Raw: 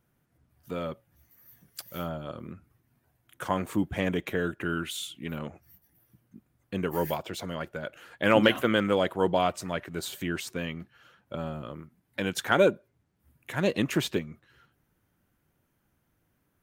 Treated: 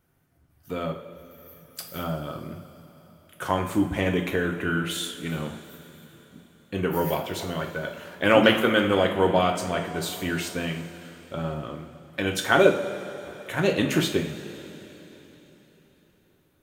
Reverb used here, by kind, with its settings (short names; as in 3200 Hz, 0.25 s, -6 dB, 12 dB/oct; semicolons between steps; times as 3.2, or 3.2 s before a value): two-slope reverb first 0.43 s, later 4 s, from -16 dB, DRR 2 dB; gain +2.5 dB